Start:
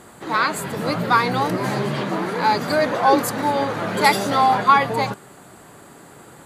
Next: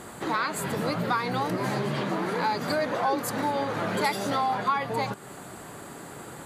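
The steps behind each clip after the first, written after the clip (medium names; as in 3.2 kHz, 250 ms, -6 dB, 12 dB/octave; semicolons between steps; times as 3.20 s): compression 3:1, threshold -30 dBFS, peak gain reduction 15.5 dB; trim +2.5 dB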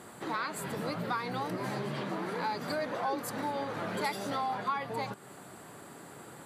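high-pass 89 Hz; band-stop 6.7 kHz, Q 19; trim -7 dB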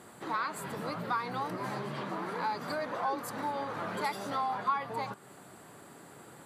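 dynamic bell 1.1 kHz, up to +6 dB, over -46 dBFS, Q 1.5; trim -3 dB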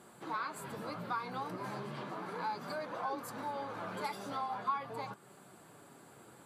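band-stop 1.9 kHz, Q 13; flange 0.37 Hz, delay 4.9 ms, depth 6.7 ms, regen -51%; trim -1 dB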